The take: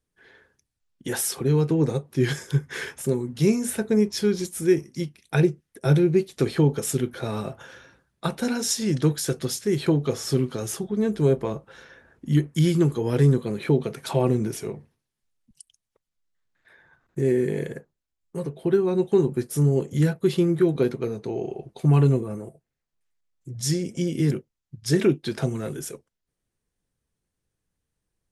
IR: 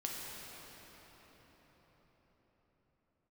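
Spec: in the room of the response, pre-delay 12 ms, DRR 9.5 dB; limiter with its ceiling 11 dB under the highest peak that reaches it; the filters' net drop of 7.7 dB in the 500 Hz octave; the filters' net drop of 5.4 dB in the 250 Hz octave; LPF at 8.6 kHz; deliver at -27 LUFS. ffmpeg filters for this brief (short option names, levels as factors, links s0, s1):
-filter_complex "[0:a]lowpass=8600,equalizer=f=250:t=o:g=-6,equalizer=f=500:t=o:g=-8,alimiter=limit=0.075:level=0:latency=1,asplit=2[s0][s1];[1:a]atrim=start_sample=2205,adelay=12[s2];[s1][s2]afir=irnorm=-1:irlink=0,volume=0.266[s3];[s0][s3]amix=inputs=2:normalize=0,volume=1.88"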